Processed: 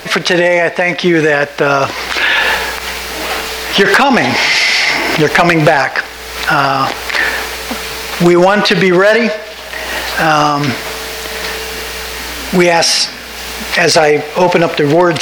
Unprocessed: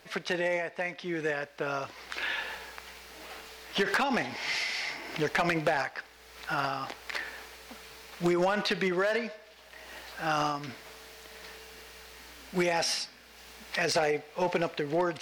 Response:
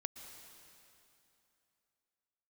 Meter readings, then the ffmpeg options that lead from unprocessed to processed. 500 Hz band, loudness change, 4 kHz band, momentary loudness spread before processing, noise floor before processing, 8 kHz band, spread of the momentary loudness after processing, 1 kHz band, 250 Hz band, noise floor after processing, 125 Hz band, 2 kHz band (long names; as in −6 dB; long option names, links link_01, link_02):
+19.5 dB, +19.0 dB, +21.0 dB, 20 LU, −54 dBFS, +21.0 dB, 12 LU, +19.5 dB, +20.0 dB, −27 dBFS, +21.0 dB, +20.5 dB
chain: -af "alimiter=level_in=28dB:limit=-1dB:release=50:level=0:latency=1,volume=-1dB"